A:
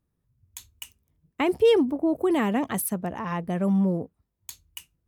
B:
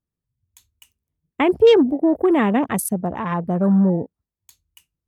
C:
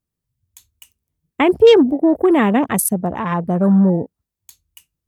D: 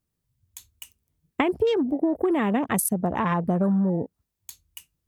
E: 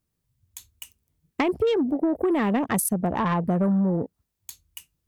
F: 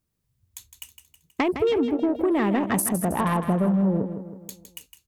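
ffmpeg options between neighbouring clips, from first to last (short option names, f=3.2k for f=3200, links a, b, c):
-af "afwtdn=0.0178,volume=6.5dB"
-af "highshelf=f=5.5k:g=5,volume=3dB"
-af "acompressor=threshold=-22dB:ratio=10,volume=2dB"
-af "asoftclip=type=tanh:threshold=-16dB,volume=1.5dB"
-af "aecho=1:1:160|320|480|640|800:0.335|0.161|0.0772|0.037|0.0178"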